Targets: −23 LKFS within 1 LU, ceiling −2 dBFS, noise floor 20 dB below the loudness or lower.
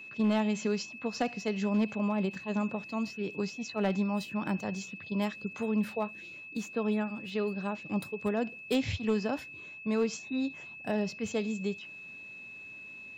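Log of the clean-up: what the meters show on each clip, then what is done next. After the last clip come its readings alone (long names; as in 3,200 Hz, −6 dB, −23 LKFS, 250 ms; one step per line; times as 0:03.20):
share of clipped samples 0.2%; peaks flattened at −21.0 dBFS; interfering tone 2,600 Hz; level of the tone −44 dBFS; integrated loudness −33.0 LKFS; sample peak −21.0 dBFS; target loudness −23.0 LKFS
→ clipped peaks rebuilt −21 dBFS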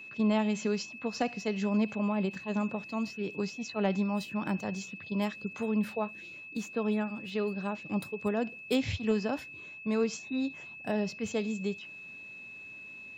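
share of clipped samples 0.0%; interfering tone 2,600 Hz; level of the tone −44 dBFS
→ notch filter 2,600 Hz, Q 30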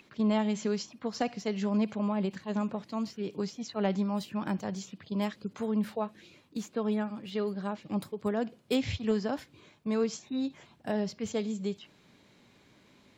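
interfering tone none found; integrated loudness −33.0 LKFS; sample peak −16.0 dBFS; target loudness −23.0 LKFS
→ level +10 dB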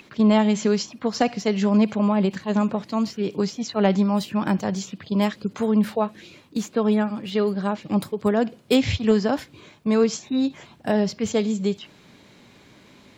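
integrated loudness −23.0 LKFS; sample peak −6.0 dBFS; background noise floor −52 dBFS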